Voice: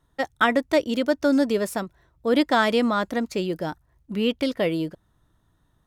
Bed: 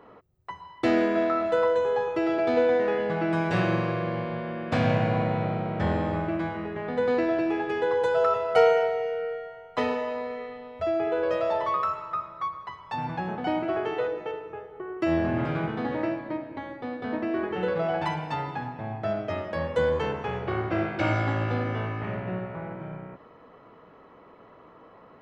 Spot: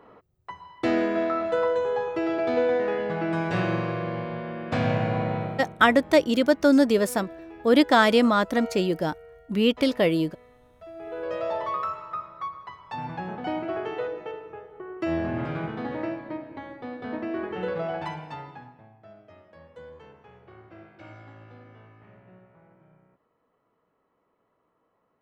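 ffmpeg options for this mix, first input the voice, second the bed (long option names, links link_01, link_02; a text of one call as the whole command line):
ffmpeg -i stem1.wav -i stem2.wav -filter_complex "[0:a]adelay=5400,volume=2dB[link_01];[1:a]volume=13.5dB,afade=type=out:start_time=5.36:duration=0.42:silence=0.158489,afade=type=in:start_time=10.94:duration=0.52:silence=0.188365,afade=type=out:start_time=17.77:duration=1.15:silence=0.11885[link_02];[link_01][link_02]amix=inputs=2:normalize=0" out.wav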